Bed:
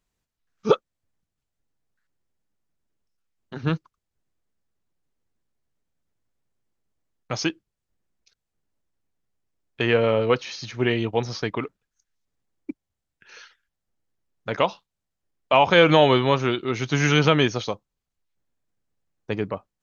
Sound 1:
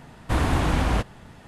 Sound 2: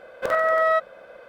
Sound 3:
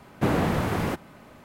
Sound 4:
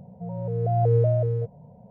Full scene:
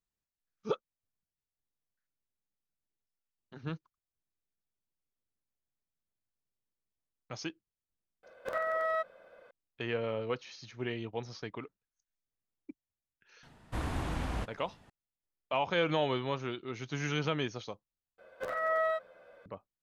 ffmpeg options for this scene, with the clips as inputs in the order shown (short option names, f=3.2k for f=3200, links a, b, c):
-filter_complex "[2:a]asplit=2[a][b];[0:a]volume=-14.5dB[c];[b]asplit=2[d][e];[e]adelay=10.5,afreqshift=-1.6[f];[d][f]amix=inputs=2:normalize=1[g];[c]asplit=2[h][i];[h]atrim=end=18.184[j];[g]atrim=end=1.28,asetpts=PTS-STARTPTS,volume=-9dB[k];[i]atrim=start=19.456[l];[a]atrim=end=1.28,asetpts=PTS-STARTPTS,volume=-12dB,afade=t=in:d=0.004:c=hsin,afade=t=out:st=1.276:d=0.004:c=hsin,adelay=8230[m];[1:a]atrim=end=1.47,asetpts=PTS-STARTPTS,volume=-13dB,afade=t=in:d=0.004:c=hsin,afade=t=out:st=1.466:d=0.004:c=hsin,adelay=13430[n];[j][k]acrossfade=d=0.004:c1=hsin:c2=hsin[o];[o][l]acrossfade=d=0.004:c1=hsin:c2=hsin[p];[p][m][n]amix=inputs=3:normalize=0"